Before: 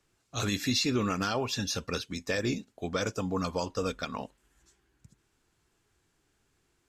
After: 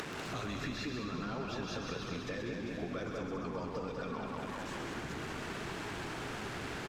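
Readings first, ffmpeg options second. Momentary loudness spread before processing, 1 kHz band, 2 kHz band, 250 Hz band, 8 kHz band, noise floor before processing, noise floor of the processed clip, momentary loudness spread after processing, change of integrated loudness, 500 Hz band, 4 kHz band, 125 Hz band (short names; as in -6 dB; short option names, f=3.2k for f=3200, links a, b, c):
10 LU, -4.0 dB, -3.5 dB, -6.0 dB, -12.0 dB, -74 dBFS, -42 dBFS, 2 LU, -8.0 dB, -5.5 dB, -10.0 dB, -6.0 dB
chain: -filter_complex "[0:a]aeval=exprs='val(0)+0.5*0.0133*sgn(val(0))':c=same,alimiter=limit=-22.5dB:level=0:latency=1,highpass=120,lowpass=2.2k,flanger=delay=4.2:depth=4.1:regen=-76:speed=0.74:shape=sinusoidal,acompressor=mode=upward:threshold=-47dB:ratio=2.5,asplit=2[a][b];[b]aecho=0:1:196|392|588|784|980|1176|1372|1568:0.596|0.334|0.187|0.105|0.0586|0.0328|0.0184|0.0103[c];[a][c]amix=inputs=2:normalize=0,acompressor=threshold=-47dB:ratio=6,aemphasis=mode=production:type=50fm,asplit=2[d][e];[e]asplit=8[f][g][h][i][j][k][l][m];[f]adelay=131,afreqshift=-52,volume=-6dB[n];[g]adelay=262,afreqshift=-104,volume=-10.7dB[o];[h]adelay=393,afreqshift=-156,volume=-15.5dB[p];[i]adelay=524,afreqshift=-208,volume=-20.2dB[q];[j]adelay=655,afreqshift=-260,volume=-24.9dB[r];[k]adelay=786,afreqshift=-312,volume=-29.7dB[s];[l]adelay=917,afreqshift=-364,volume=-34.4dB[t];[m]adelay=1048,afreqshift=-416,volume=-39.1dB[u];[n][o][p][q][r][s][t][u]amix=inputs=8:normalize=0[v];[d][v]amix=inputs=2:normalize=0,volume=9dB"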